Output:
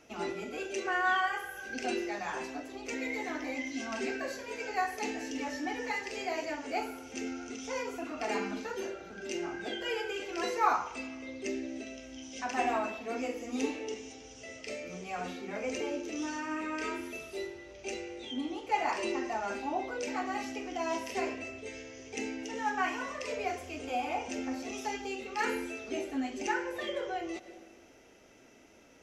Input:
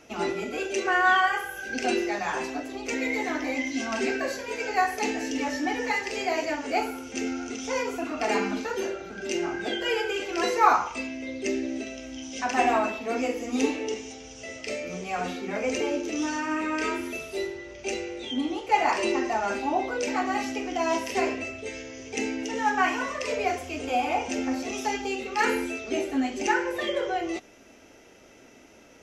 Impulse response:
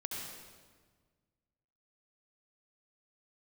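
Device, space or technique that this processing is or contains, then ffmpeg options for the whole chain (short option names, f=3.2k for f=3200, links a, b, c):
ducked reverb: -filter_complex "[0:a]asplit=3[a][b][c];[1:a]atrim=start_sample=2205[d];[b][d]afir=irnorm=-1:irlink=0[e];[c]apad=whole_len=1280175[f];[e][f]sidechaincompress=threshold=-44dB:ratio=3:attack=16:release=112,volume=-10dB[g];[a][g]amix=inputs=2:normalize=0,volume=-8dB"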